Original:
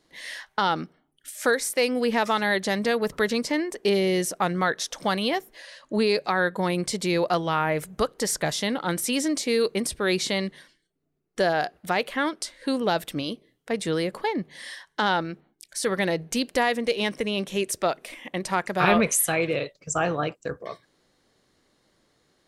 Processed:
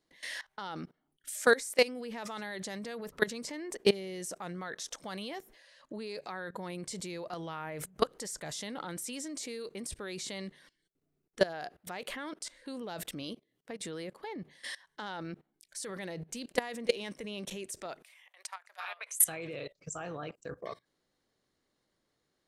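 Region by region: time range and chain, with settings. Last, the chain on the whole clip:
13.33–14.36 low shelf 62 Hz -12 dB + compressor 2:1, threshold -37 dBFS
18.03–19.2 Bessel high-pass 1100 Hz, order 6 + high shelf 12000 Hz +4 dB + compressor 4:1, threshold -38 dBFS
whole clip: dynamic EQ 7600 Hz, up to +7 dB, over -45 dBFS, Q 1.5; level quantiser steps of 20 dB

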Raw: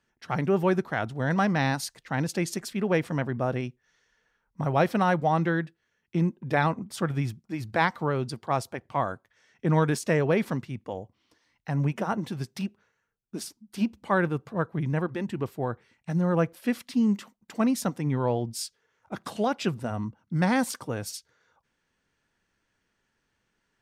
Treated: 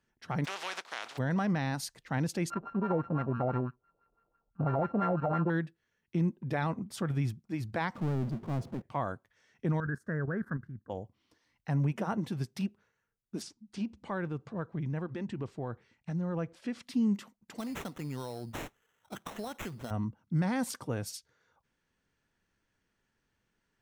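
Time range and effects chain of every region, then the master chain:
0.44–1.17 spectral contrast lowered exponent 0.33 + compressor 3:1, threshold -27 dBFS + BPF 690–4700 Hz
2.5–5.5 sample sorter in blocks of 32 samples + high shelf 3800 Hz -9.5 dB + LFO low-pass sine 6 Hz 580–1700 Hz
7.95–8.82 band-pass 200 Hz, Q 1.4 + power-law curve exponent 0.5
9.8–10.9 EQ curve 130 Hz 0 dB, 890 Hz -11 dB, 1600 Hz +11 dB, 2400 Hz -30 dB, 11000 Hz -19 dB + level quantiser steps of 10 dB
13.42–16.83 LPF 7800 Hz 24 dB/oct + compressor 2:1, threshold -33 dBFS
17.58–19.91 tilt +2 dB/oct + compressor 10:1, threshold -31 dBFS + sample-rate reducer 4700 Hz
whole clip: low shelf 320 Hz +4.5 dB; limiter -17 dBFS; gain -5 dB

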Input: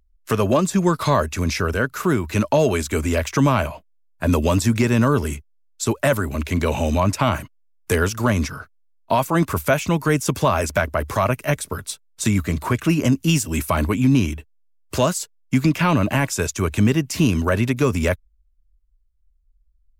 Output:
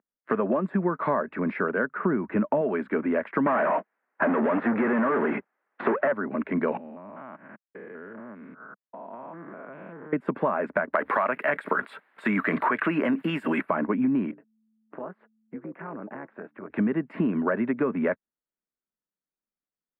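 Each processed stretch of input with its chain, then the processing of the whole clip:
1.96–2.61 Butterworth band-stop 5300 Hz, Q 1.4 + low shelf 210 Hz +8 dB + de-esser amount 60%
3.46–6.12 overdrive pedal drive 38 dB, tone 6900 Hz, clips at -7 dBFS + air absorption 250 m
6.77–10.13 stepped spectrum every 0.2 s + compressor 8:1, threshold -36 dBFS
10.93–13.61 tilt +4 dB/oct + fast leveller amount 70%
14.31–16.7 LPF 1800 Hz + compressor 2:1, threshold -39 dBFS + AM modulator 220 Hz, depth 65%
whole clip: elliptic band-pass 200–1800 Hz, stop band 50 dB; compressor, threshold -21 dBFS

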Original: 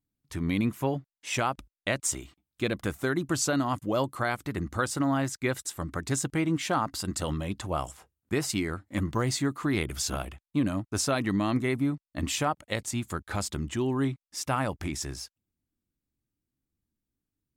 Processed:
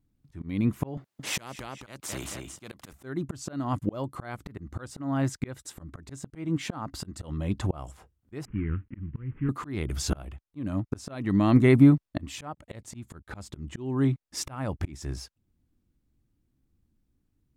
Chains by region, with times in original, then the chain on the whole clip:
0.97–2.93 HPF 130 Hz + feedback echo 0.222 s, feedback 17%, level -17 dB + spectral compressor 2:1
8.45–9.49 CVSD 16 kbps + bell 940 Hz -11.5 dB 2.6 oct + fixed phaser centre 1600 Hz, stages 4
whole clip: tilt -2 dB/oct; auto swell 0.696 s; gain +7.5 dB

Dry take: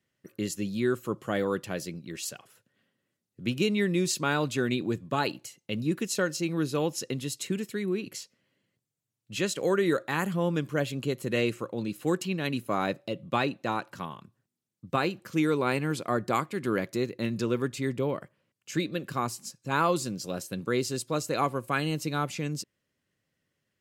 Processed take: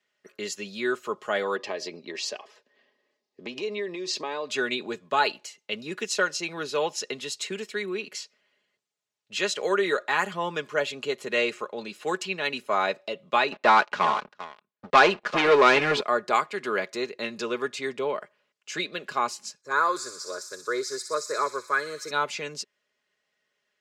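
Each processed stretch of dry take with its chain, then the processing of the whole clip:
1.56–4.5 EQ curve 190 Hz 0 dB, 280 Hz +10 dB, 3400 Hz 0 dB, 4900 Hz +4 dB, 9900 Hz -10 dB + compressor 10:1, threshold -28 dBFS + Butterworth band-stop 1400 Hz, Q 5.2
13.52–16.01 LPF 3300 Hz + echo 0.395 s -15 dB + sample leveller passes 3
19.61–22.11 fixed phaser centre 760 Hz, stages 6 + thin delay 61 ms, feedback 79%, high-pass 3900 Hz, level -5.5 dB
whole clip: three-band isolator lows -21 dB, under 430 Hz, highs -20 dB, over 7300 Hz; comb 4.8 ms, depth 53%; gain +5 dB

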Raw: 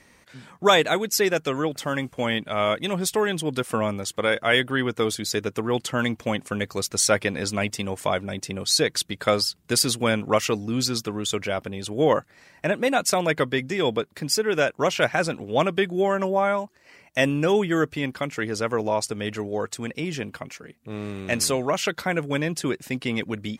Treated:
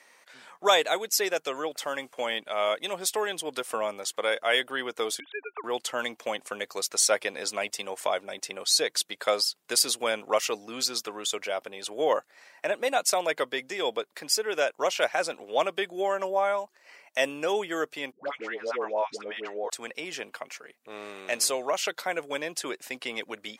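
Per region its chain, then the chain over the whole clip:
5.2–5.64 sine-wave speech + resonant low shelf 750 Hz -6.5 dB, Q 1.5
18.12–19.7 BPF 150–3100 Hz + dispersion highs, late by 0.115 s, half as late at 680 Hz
whole clip: Chebyshev high-pass 640 Hz, order 2; dynamic EQ 1500 Hz, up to -5 dB, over -37 dBFS, Q 0.73

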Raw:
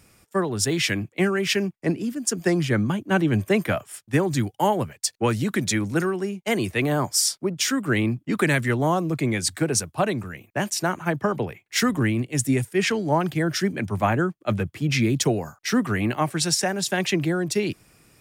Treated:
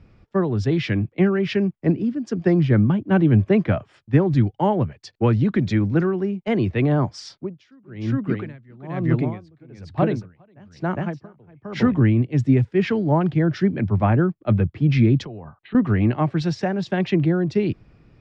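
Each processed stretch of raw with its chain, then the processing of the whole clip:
7.31–11.94 echo 0.409 s -4 dB + dB-linear tremolo 1.1 Hz, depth 30 dB
15.25–15.75 notch 1400 Hz, Q 13 + compressor 5:1, threshold -31 dBFS + rippled Chebyshev low-pass 4100 Hz, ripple 6 dB
whole clip: LPF 4700 Hz 24 dB/oct; tilt -3 dB/oct; gain -1.5 dB

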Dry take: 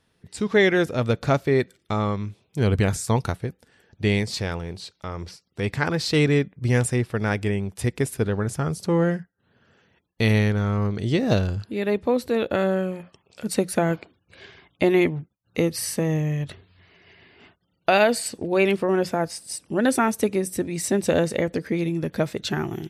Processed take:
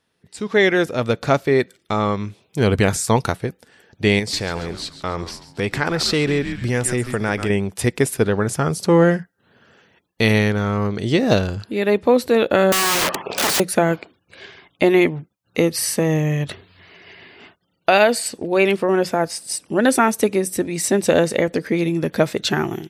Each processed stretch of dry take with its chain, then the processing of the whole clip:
4.19–7.5 frequency-shifting echo 0.137 s, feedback 42%, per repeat -120 Hz, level -13.5 dB + compressor 2.5:1, threshold -25 dBFS
12.72–13.6 LPF 2800 Hz 6 dB/oct + overdrive pedal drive 40 dB, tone 1000 Hz, clips at -6.5 dBFS + wrapped overs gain 21.5 dB
whole clip: low shelf 130 Hz -11 dB; AGC gain up to 11.5 dB; gain -1.5 dB

